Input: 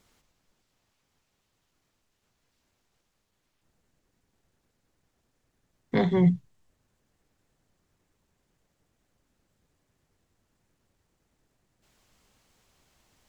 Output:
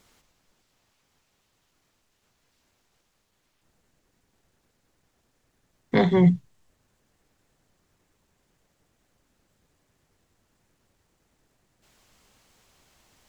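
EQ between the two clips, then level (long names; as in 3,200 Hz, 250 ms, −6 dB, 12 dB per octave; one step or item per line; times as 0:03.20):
low-shelf EQ 320 Hz −3 dB
+5.5 dB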